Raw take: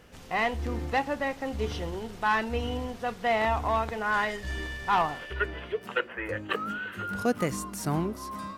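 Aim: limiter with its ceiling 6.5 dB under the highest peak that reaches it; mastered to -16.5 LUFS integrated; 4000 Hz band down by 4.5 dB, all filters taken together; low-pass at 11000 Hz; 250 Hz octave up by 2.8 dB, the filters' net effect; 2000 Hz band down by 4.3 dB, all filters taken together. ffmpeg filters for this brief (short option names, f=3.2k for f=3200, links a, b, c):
-af "lowpass=11k,equalizer=f=250:t=o:g=3.5,equalizer=f=2k:t=o:g=-5,equalizer=f=4k:t=o:g=-4,volume=15.5dB,alimiter=limit=-4.5dB:level=0:latency=1"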